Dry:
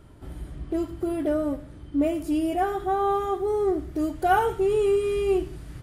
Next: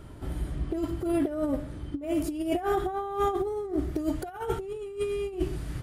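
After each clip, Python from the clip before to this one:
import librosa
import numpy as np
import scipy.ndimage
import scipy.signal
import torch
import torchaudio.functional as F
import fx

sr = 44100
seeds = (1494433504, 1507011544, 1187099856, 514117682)

y = fx.over_compress(x, sr, threshold_db=-28.0, ratio=-0.5)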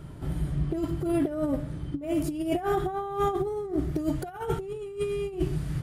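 y = fx.peak_eq(x, sr, hz=150.0, db=12.5, octaves=0.44)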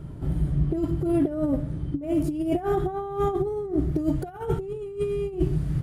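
y = fx.tilt_shelf(x, sr, db=5.0, hz=730.0)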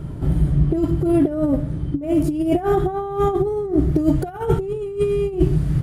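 y = fx.rider(x, sr, range_db=10, speed_s=2.0)
y = F.gain(torch.from_numpy(y), 6.0).numpy()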